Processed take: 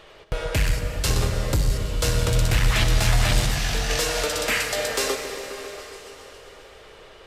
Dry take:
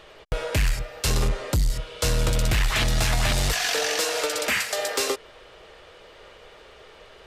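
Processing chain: 3.46–3.9 resonator 62 Hz, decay 0.22 s, harmonics all, mix 80%; repeats that get brighter 0.136 s, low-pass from 200 Hz, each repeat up 1 oct, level -6 dB; plate-style reverb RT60 3.6 s, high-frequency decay 1×, DRR 6.5 dB

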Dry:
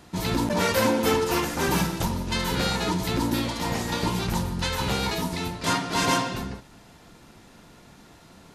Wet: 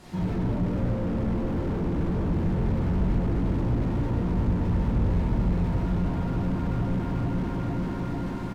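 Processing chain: low shelf 200 Hz +4 dB; treble ducked by the level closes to 2000 Hz, closed at -20.5 dBFS; feedback echo 0.44 s, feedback 57%, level -3 dB; limiter -17.5 dBFS, peak gain reduction 9 dB; soft clip -24.5 dBFS, distortion -13 dB; reverb RT60 3.0 s, pre-delay 5 ms, DRR -9 dB; slew limiter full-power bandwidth 17 Hz; gain -2 dB

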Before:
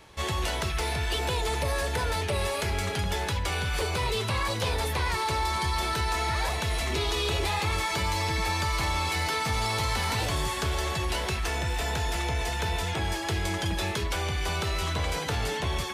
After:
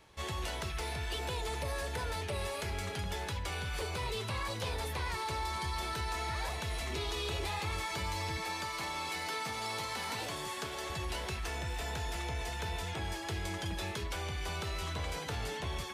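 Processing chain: 8.37–10.9 HPF 170 Hz 12 dB/oct; gain -8.5 dB

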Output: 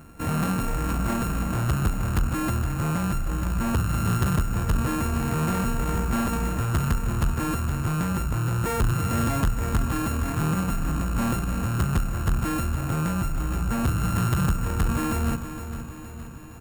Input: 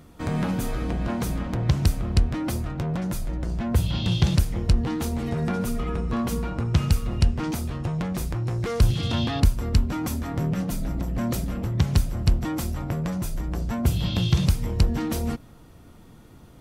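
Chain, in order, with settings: sample sorter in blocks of 32 samples; band shelf 4100 Hz -9 dB 1.2 oct; soft clip -20.5 dBFS, distortion -9 dB; on a send: feedback echo 0.466 s, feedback 57%, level -10.5 dB; on the sum: gain +2.5 dB

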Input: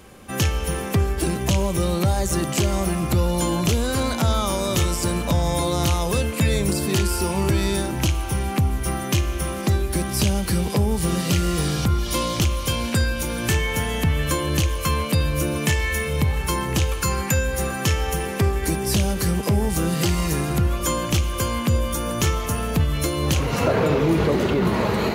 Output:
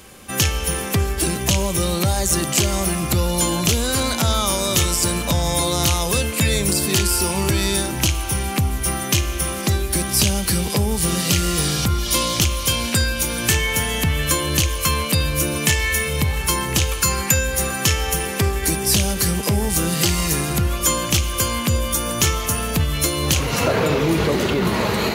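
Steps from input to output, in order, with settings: high shelf 2100 Hz +9 dB

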